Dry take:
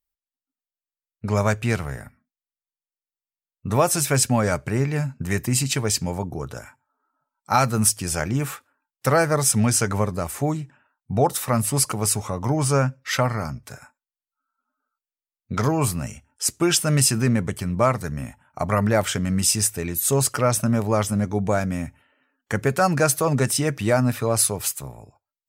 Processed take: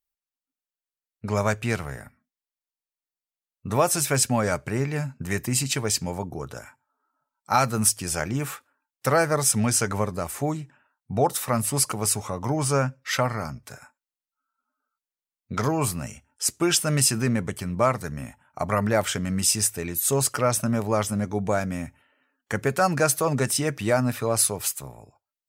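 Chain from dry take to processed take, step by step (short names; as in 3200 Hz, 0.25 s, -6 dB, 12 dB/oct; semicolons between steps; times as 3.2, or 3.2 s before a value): low shelf 190 Hz -4.5 dB; gain -1.5 dB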